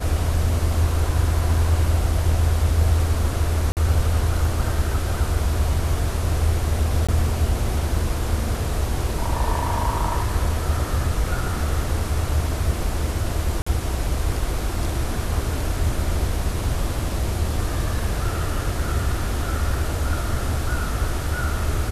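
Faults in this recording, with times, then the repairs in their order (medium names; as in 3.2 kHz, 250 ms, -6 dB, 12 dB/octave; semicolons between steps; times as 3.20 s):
3.72–3.77 s: dropout 48 ms
7.07–7.09 s: dropout 16 ms
13.62–13.66 s: dropout 45 ms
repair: interpolate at 3.72 s, 48 ms; interpolate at 7.07 s, 16 ms; interpolate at 13.62 s, 45 ms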